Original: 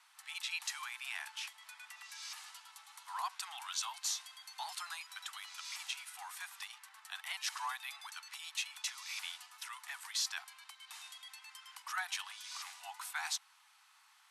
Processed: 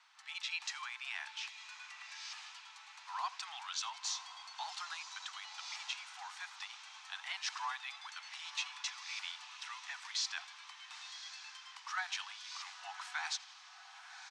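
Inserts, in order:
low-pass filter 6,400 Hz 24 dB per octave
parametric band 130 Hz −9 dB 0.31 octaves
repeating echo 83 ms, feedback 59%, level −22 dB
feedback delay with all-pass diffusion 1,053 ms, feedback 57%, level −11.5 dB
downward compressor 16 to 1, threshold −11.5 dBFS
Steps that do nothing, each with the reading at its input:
parametric band 130 Hz: nothing at its input below 600 Hz
downward compressor, threshold −11.5 dBFS: peak of its input −24.5 dBFS

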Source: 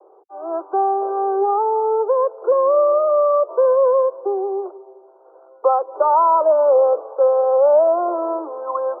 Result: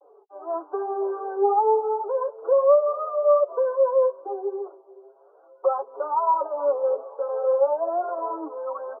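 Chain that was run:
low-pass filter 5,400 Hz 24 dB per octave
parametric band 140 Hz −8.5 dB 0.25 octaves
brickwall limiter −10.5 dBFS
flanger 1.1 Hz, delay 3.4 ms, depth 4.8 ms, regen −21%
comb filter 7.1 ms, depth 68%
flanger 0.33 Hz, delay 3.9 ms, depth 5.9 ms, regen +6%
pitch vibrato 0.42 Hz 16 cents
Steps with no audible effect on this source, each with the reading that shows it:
low-pass filter 5,400 Hz: nothing at its input above 1,400 Hz
parametric band 140 Hz: nothing at its input below 340 Hz

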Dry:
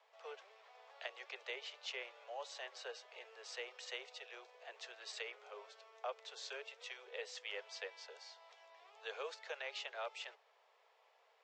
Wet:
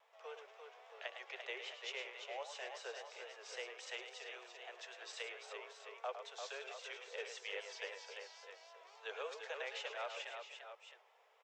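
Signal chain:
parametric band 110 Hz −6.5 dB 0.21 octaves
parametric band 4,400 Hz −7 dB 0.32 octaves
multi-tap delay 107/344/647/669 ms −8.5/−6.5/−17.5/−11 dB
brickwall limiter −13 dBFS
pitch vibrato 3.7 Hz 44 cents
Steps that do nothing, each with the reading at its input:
parametric band 110 Hz: nothing at its input below 340 Hz
brickwall limiter −13 dBFS: peak of its input −26.5 dBFS

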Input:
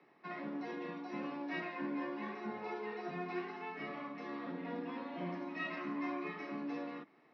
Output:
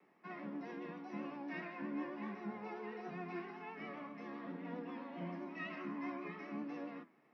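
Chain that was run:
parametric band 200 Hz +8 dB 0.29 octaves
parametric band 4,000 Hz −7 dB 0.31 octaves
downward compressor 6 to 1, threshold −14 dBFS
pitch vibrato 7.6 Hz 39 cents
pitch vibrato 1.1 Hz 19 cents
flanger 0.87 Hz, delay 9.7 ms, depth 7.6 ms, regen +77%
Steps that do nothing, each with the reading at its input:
downward compressor, threshold −14 dBFS: peak of its input −26.5 dBFS

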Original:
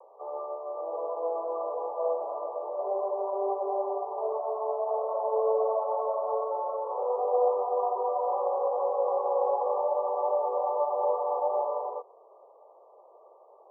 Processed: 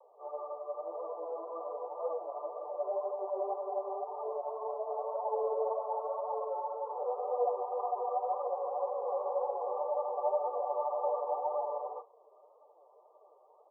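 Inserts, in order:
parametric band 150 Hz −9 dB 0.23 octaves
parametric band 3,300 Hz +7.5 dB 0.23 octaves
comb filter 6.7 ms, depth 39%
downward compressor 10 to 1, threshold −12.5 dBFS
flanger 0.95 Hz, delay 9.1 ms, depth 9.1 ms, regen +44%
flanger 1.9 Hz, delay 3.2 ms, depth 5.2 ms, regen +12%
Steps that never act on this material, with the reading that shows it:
parametric band 150 Hz: nothing at its input below 360 Hz
parametric band 3,300 Hz: nothing at its input above 1,200 Hz
downward compressor, threshold −12.5 dBFS: peak of its input −14.0 dBFS

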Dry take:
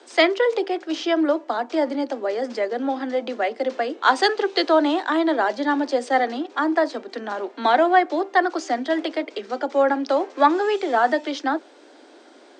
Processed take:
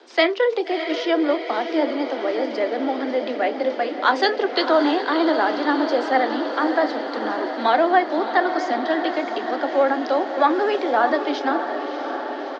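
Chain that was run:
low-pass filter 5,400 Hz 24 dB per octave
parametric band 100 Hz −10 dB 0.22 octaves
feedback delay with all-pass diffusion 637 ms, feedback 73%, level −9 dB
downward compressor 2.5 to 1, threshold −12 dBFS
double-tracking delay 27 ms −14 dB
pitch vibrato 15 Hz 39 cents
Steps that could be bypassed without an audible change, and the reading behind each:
parametric band 100 Hz: nothing at its input below 200 Hz

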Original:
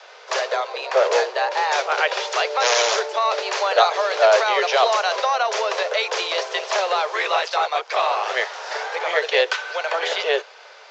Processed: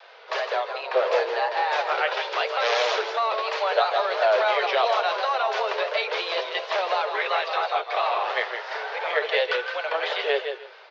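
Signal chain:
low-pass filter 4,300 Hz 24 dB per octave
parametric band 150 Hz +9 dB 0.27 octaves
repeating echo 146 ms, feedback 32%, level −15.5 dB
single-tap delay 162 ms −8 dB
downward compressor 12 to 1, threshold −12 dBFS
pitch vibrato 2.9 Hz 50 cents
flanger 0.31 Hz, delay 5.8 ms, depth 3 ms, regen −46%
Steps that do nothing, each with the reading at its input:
parametric band 150 Hz: nothing at its input below 340 Hz

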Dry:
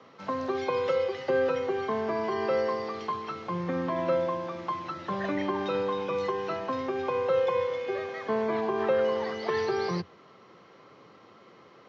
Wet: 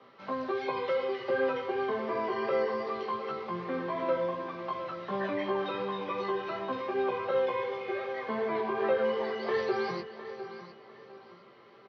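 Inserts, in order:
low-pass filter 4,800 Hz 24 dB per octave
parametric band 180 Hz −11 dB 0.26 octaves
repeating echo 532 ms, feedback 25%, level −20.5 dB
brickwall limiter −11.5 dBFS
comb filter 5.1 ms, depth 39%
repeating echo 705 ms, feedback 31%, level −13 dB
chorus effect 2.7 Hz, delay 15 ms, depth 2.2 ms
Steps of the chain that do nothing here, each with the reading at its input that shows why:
brickwall limiter −11.5 dBFS: peak of its input −14.5 dBFS

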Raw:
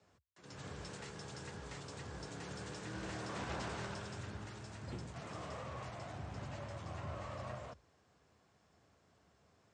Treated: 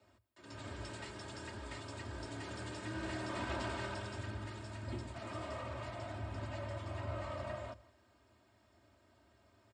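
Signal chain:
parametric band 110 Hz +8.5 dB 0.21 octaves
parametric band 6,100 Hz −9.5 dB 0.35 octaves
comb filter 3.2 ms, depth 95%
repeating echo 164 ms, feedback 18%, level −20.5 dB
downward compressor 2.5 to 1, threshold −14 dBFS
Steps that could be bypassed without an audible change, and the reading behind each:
downward compressor, threshold −14 dBFS: peak of its input −27.5 dBFS

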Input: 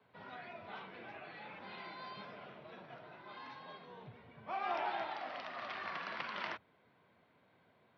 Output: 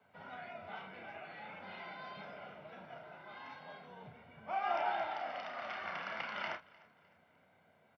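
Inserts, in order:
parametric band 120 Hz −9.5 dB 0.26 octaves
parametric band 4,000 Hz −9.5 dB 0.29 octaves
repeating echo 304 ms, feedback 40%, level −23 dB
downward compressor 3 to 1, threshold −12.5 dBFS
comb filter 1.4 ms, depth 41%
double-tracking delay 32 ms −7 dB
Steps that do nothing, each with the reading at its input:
downward compressor, threshold −12.5 dBFS: peak of its input −24.5 dBFS

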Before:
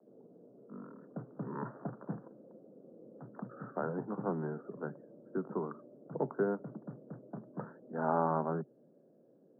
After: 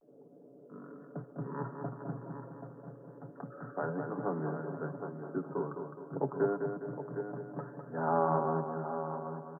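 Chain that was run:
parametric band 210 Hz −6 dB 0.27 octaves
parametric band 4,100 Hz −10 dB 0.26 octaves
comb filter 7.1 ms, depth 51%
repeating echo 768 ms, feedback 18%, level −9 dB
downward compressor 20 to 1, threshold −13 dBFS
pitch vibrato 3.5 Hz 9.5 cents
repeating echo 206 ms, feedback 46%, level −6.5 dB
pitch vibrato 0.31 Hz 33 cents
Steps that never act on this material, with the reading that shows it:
parametric band 4,100 Hz: nothing at its input above 1,600 Hz
downward compressor, threshold −13 dBFS: peak of its input −16.0 dBFS

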